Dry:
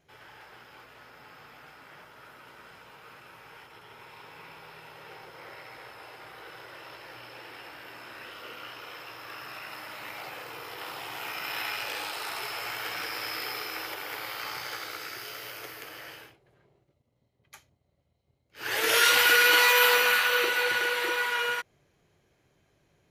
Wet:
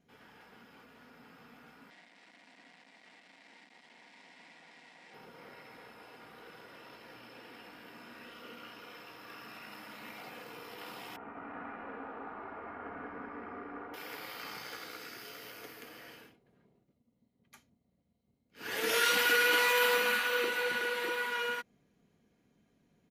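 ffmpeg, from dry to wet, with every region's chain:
-filter_complex "[0:a]asettb=1/sr,asplit=3[s0][s1][s2];[s0]atrim=end=1.904[s3];[s1]atrim=start=1.9:end=5.14,asetpts=PTS-STARTPTS,afade=t=in:d=0.004:c=qsin,afade=t=out:st=3.236:d=0.004:c=qsin,acrusher=bits=5:dc=4:mix=0:aa=0.000001,highpass=f=200:w=0.5412,highpass=f=200:w=1.3066,equalizer=f=220:t=q:w=4:g=-9,equalizer=f=430:t=q:w=4:g=-9,equalizer=f=730:t=q:w=4:g=5,equalizer=f=1300:t=q:w=4:g=-8,equalizer=f=2000:t=q:w=4:g=10,equalizer=f=6400:t=q:w=4:g=-8,lowpass=f=7200:w=0.5412,lowpass=f=7200:w=1.3066[s4];[s2]atrim=start=5.136[s5];[s3][s4]acrossfade=d=0.004:c1=hsin:c2=qsin[s6];[s6][s5]acrossfade=d=0.004:c1=qsin:c2=hsin,asettb=1/sr,asplit=3[s7][s8][s9];[s7]atrim=end=11.164[s10];[s8]atrim=start=11.16:end=13.94,asetpts=PTS-STARTPTS,afade=t=in:d=0.004:c=qsin,afade=t=out:st=2.776:d=0.004:c=qsin,lowpass=f=1500:w=0.5412,lowpass=f=1500:w=1.3066,afreqshift=-32,aecho=1:1:202:0.668,atrim=end_sample=122598[s11];[s9]atrim=start=13.936[s12];[s10][s11]acrossfade=d=0.004:c1=hsin:c2=qsin[s13];[s13][s12]acrossfade=d=0.004:c1=qsin:c2=hsin,equalizer=f=220:t=o:w=1.1:g=14,aecho=1:1:4.2:0.35,volume=0.376"

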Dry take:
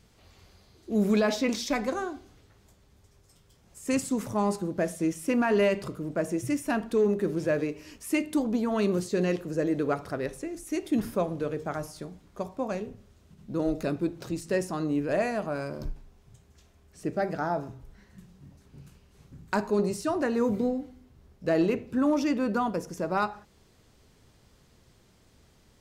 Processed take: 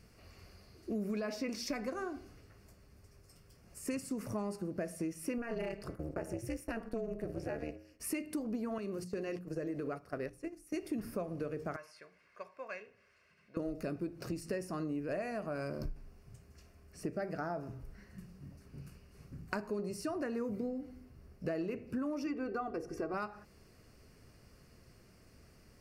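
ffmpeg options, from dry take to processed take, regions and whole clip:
-filter_complex "[0:a]asettb=1/sr,asplit=3[s0][s1][s2];[s0]atrim=end=5.384[s3];[s1]atrim=start=5.38:end=8,asetpts=PTS-STARTPTS,afade=t=in:d=0.004:c=qsin,afade=t=out:st=2.616:d=0.004:c=qsin,agate=range=0.2:threshold=0.00794:ratio=16:release=100:detection=peak,bandreject=f=104.4:t=h:w=4,bandreject=f=208.8:t=h:w=4,bandreject=f=313.2:t=h:w=4,bandreject=f=417.6:t=h:w=4,bandreject=f=522:t=h:w=4,bandreject=f=626.4:t=h:w=4,bandreject=f=730.8:t=h:w=4,bandreject=f=835.2:t=h:w=4,bandreject=f=939.6:t=h:w=4,bandreject=f=1044:t=h:w=4,bandreject=f=1148.4:t=h:w=4,bandreject=f=1252.8:t=h:w=4,bandreject=f=1357.2:t=h:w=4,bandreject=f=1461.6:t=h:w=4,bandreject=f=1566:t=h:w=4,bandreject=f=1670.4:t=h:w=4,bandreject=f=1774.8:t=h:w=4,bandreject=f=1879.2:t=h:w=4,bandreject=f=1983.6:t=h:w=4,tremolo=f=230:d=1[s4];[s2]atrim=start=7.996[s5];[s3][s4]acrossfade=d=0.004:c1=hsin:c2=qsin[s6];[s6][s5]acrossfade=d=0.004:c1=qsin:c2=hsin,asettb=1/sr,asplit=3[s7][s8][s9];[s7]atrim=end=8.784[s10];[s8]atrim=start=8.78:end=10.74,asetpts=PTS-STARTPTS,afade=t=in:d=0.004:c=qsin,afade=t=out:st=1.956:d=0.004:c=qsin,agate=range=0.178:threshold=0.02:ratio=16:release=100:detection=peak,acompressor=threshold=0.02:ratio=2:attack=3.2:release=140:knee=1:detection=peak,bandreject=f=60:t=h:w=6,bandreject=f=120:t=h:w=6,bandreject=f=180:t=h:w=6,bandreject=f=240:t=h:w=6,bandreject=f=300:t=h:w=6[s11];[s9]atrim=start=10.736[s12];[s10][s11]acrossfade=d=0.004:c1=hsin:c2=qsin[s13];[s13][s12]acrossfade=d=0.004:c1=qsin:c2=hsin,asettb=1/sr,asplit=3[s14][s15][s16];[s14]atrim=end=11.764[s17];[s15]atrim=start=11.76:end=13.57,asetpts=PTS-STARTPTS,afade=t=in:d=0.004:c=qsin,afade=t=out:st=1.806:d=0.004:c=qsin,bandpass=f=2100:t=q:w=1.7,aecho=1:1:1.9:0.44,atrim=end_sample=79821,acompressor=mode=upward:threshold=0.00112:ratio=2.5:attack=3.2:release=140:knee=2.83:detection=peak[s18];[s16]atrim=start=13.566[s19];[s17][s18]acrossfade=d=0.004:c1=hsin:c2=qsin[s20];[s20][s19]acrossfade=d=0.004:c1=qsin:c2=hsin,asettb=1/sr,asplit=3[s21][s22][s23];[s21]atrim=end=22.264[s24];[s22]atrim=start=22.26:end=23.14,asetpts=PTS-STARTPTS,afade=t=in:d=0.004:c=qsin,afade=t=out:st=0.876:d=0.004:c=qsin,lowpass=f=2300:p=1,bandreject=f=60:t=h:w=6,bandreject=f=120:t=h:w=6,bandreject=f=180:t=h:w=6,bandreject=f=240:t=h:w=6,bandreject=f=300:t=h:w=6,bandreject=f=360:t=h:w=6,bandreject=f=420:t=h:w=6,bandreject=f=480:t=h:w=6,bandreject=f=540:t=h:w=6,bandreject=f=600:t=h:w=6,aecho=1:1:2.6:0.77,atrim=end_sample=38808[s25];[s23]atrim=start=23.136[s26];[s24][s25]acrossfade=d=0.004:c1=hsin:c2=qsin[s27];[s27][s26]acrossfade=d=0.004:c1=qsin:c2=hsin,superequalizer=9b=0.562:13b=0.282:15b=0.562,acompressor=threshold=0.0178:ratio=6"

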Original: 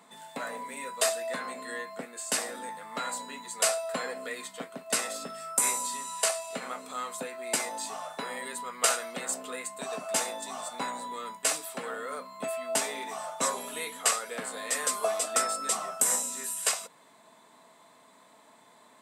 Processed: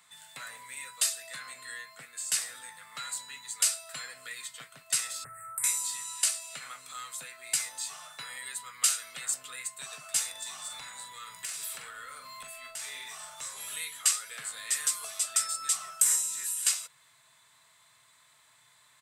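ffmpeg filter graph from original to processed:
-filter_complex "[0:a]asettb=1/sr,asplit=3[s0][s1][s2];[s0]atrim=end=5.244[s3];[s1]atrim=start=5.24:end=5.64,asetpts=PTS-STARTPTS,afade=t=in:d=0.004:c=qsin,afade=t=out:st=0.396:d=0.004:c=qsin,lowshelf=f=140:t=q:w=3:g=8,acompressor=threshold=0.0316:ratio=5:attack=3.2:release=140:knee=1:detection=peak,asuperstop=centerf=4300:order=12:qfactor=0.7[s4];[s2]atrim=start=5.636[s5];[s3][s4]acrossfade=d=0.004:c1=hsin:c2=qsin[s6];[s6][s5]acrossfade=d=0.004:c1=qsin:c2=hsin,asettb=1/sr,asplit=3[s7][s8][s9];[s7]atrim=end=10.314[s10];[s8]atrim=start=10.31:end=13.76,asetpts=PTS-STARTPTS,afade=t=in:d=0.004:c=qsin,afade=t=out:st=3.446:d=0.004:c=qsin,acompressor=threshold=0.00891:ratio=20:attack=3.2:release=140:knee=1:detection=peak,aeval=exprs='0.0422*sin(PI/2*1.58*val(0)/0.0422)':c=same,asplit=2[s11][s12];[s12]adelay=43,volume=0.447[s13];[s11][s13]amix=inputs=2:normalize=0,atrim=end_sample=152145[s14];[s9]atrim=start=13.756[s15];[s10][s14]acrossfade=d=0.004:c1=hsin:c2=qsin[s16];[s16][s15]acrossfade=d=0.004:c1=qsin:c2=hsin,equalizer=f=970:w=0.68:g=-6,acrossover=split=320|3000[s17][s18][s19];[s18]acompressor=threshold=0.0112:ratio=6[s20];[s17][s20][s19]amix=inputs=3:normalize=0,firequalizer=gain_entry='entry(130,0);entry(200,-25);entry(1300,-1)':delay=0.05:min_phase=1,volume=1.41"

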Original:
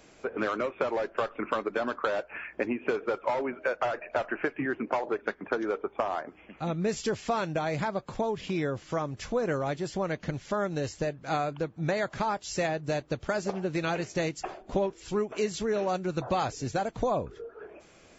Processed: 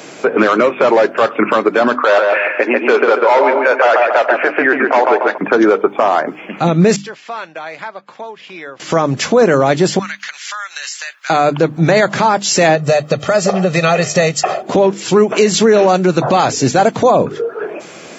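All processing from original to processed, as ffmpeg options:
-filter_complex "[0:a]asettb=1/sr,asplit=3[s0][s1][s2];[s0]atrim=end=1.954[s3];[s1]atrim=start=1.95:end=5.38,asetpts=PTS-STARTPTS,afade=t=in:d=0.004:c=qsin,afade=t=out:st=3.426:d=0.004:c=qsin,highpass=450,lowpass=6900,asplit=2[s4][s5];[s5]adelay=141,lowpass=f=2200:p=1,volume=0.631,asplit=2[s6][s7];[s7]adelay=141,lowpass=f=2200:p=1,volume=0.41,asplit=2[s8][s9];[s9]adelay=141,lowpass=f=2200:p=1,volume=0.41,asplit=2[s10][s11];[s11]adelay=141,lowpass=f=2200:p=1,volume=0.41,asplit=2[s12][s13];[s13]adelay=141,lowpass=f=2200:p=1,volume=0.41[s14];[s4][s6][s8][s10][s12][s14]amix=inputs=6:normalize=0,atrim=end_sample=151263[s15];[s2]atrim=start=5.376[s16];[s3][s15]acrossfade=d=0.004:c1=hsin:c2=qsin[s17];[s17][s16]acrossfade=d=0.004:c1=qsin:c2=hsin,asettb=1/sr,asplit=3[s18][s19][s20];[s18]atrim=end=6.964[s21];[s19]atrim=start=6.96:end=8.8,asetpts=PTS-STARTPTS,afade=t=in:d=0.004:c=qsin,afade=t=out:st=1.836:d=0.004:c=qsin,lowpass=1900,aderivative[s22];[s20]atrim=start=8.796[s23];[s21][s22]acrossfade=d=0.004:c1=hsin:c2=qsin[s24];[s24][s23]acrossfade=d=0.004:c1=qsin:c2=hsin,asettb=1/sr,asplit=3[s25][s26][s27];[s25]atrim=end=9.994[s28];[s26]atrim=start=9.99:end=11.3,asetpts=PTS-STARTPTS,afade=t=in:d=0.004:c=qsin,afade=t=out:st=1.306:d=0.004:c=qsin,highpass=f=1400:w=0.5412,highpass=f=1400:w=1.3066,acompressor=threshold=0.00631:ratio=4:attack=3.2:release=140:knee=1:detection=peak[s29];[s27]atrim=start=11.296[s30];[s28][s29]acrossfade=d=0.004:c1=hsin:c2=qsin[s31];[s31][s30]acrossfade=d=0.004:c1=qsin:c2=hsin,asettb=1/sr,asplit=3[s32][s33][s34];[s32]atrim=end=12.754[s35];[s33]atrim=start=12.75:end=14.63,asetpts=PTS-STARTPTS,afade=t=in:d=0.004:c=qsin,afade=t=out:st=1.876:d=0.004:c=qsin,aecho=1:1:1.6:0.73,atrim=end_sample=82908,acompressor=threshold=0.0224:ratio=2.5:attack=3.2:release=140:knee=1:detection=peak[s36];[s34]atrim=start=14.626[s37];[s35][s36]acrossfade=d=0.004:c1=hsin:c2=qsin[s38];[s38][s37]acrossfade=d=0.004:c1=qsin:c2=hsin,highpass=f=140:w=0.5412,highpass=f=140:w=1.3066,bandreject=f=50:t=h:w=6,bandreject=f=100:t=h:w=6,bandreject=f=150:t=h:w=6,bandreject=f=200:t=h:w=6,bandreject=f=250:t=h:w=6,bandreject=f=300:t=h:w=6,alimiter=level_in=15:limit=0.891:release=50:level=0:latency=1,volume=0.891"

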